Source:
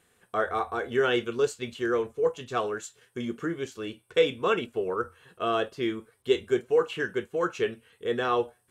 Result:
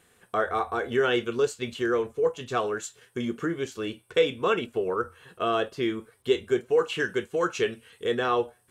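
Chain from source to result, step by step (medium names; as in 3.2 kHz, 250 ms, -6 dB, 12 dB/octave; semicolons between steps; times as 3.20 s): in parallel at -0.5 dB: compression, threshold -32 dBFS, peak gain reduction 15 dB; 6.78–8.15 s: on the sum: peaking EQ 6.1 kHz +5.5 dB 2.2 oct; trim -1.5 dB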